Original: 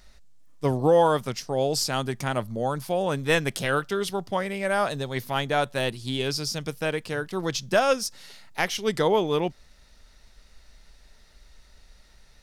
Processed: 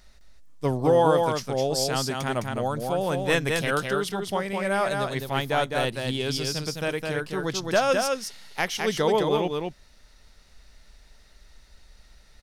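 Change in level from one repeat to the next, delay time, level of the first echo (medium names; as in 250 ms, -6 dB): no regular repeats, 210 ms, -4.0 dB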